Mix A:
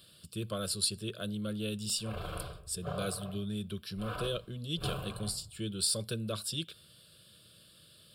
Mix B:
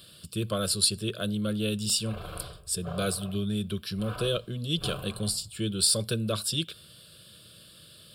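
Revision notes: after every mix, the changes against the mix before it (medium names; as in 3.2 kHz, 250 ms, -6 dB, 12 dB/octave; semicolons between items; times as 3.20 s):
speech +7.0 dB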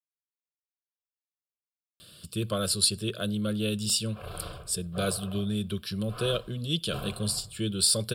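speech: entry +2.00 s; background: entry +2.10 s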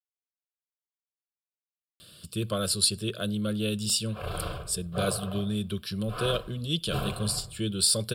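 background +6.0 dB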